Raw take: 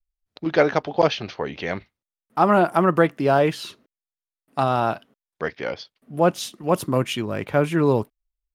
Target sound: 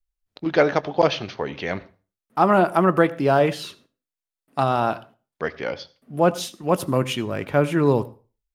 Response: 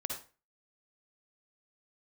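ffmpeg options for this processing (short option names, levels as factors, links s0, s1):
-filter_complex "[0:a]asplit=2[s0][s1];[s1]lowshelf=f=160:g=9.5[s2];[1:a]atrim=start_sample=2205,adelay=21[s3];[s2][s3]afir=irnorm=-1:irlink=0,volume=0.126[s4];[s0][s4]amix=inputs=2:normalize=0"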